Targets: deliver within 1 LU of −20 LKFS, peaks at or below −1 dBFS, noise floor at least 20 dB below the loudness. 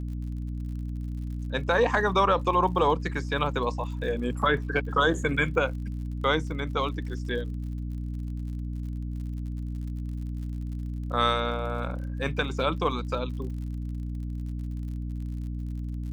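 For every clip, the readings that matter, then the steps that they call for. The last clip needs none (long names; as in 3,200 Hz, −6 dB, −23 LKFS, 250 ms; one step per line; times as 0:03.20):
crackle rate 56 per second; mains hum 60 Hz; hum harmonics up to 300 Hz; level of the hum −30 dBFS; integrated loudness −29.0 LKFS; sample peak −9.5 dBFS; target loudness −20.0 LKFS
→ click removal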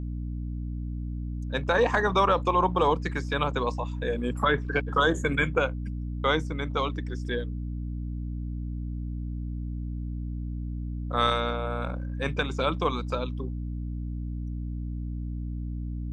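crackle rate 0 per second; mains hum 60 Hz; hum harmonics up to 300 Hz; level of the hum −30 dBFS
→ hum removal 60 Hz, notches 5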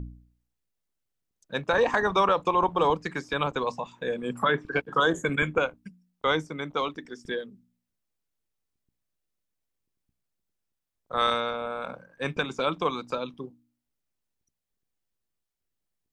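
mains hum none found; integrated loudness −27.5 LKFS; sample peak −10.0 dBFS; target loudness −20.0 LKFS
→ level +7.5 dB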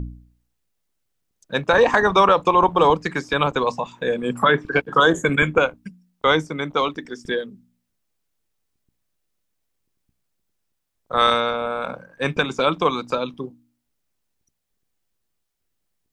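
integrated loudness −20.0 LKFS; sample peak −2.5 dBFS; background noise floor −75 dBFS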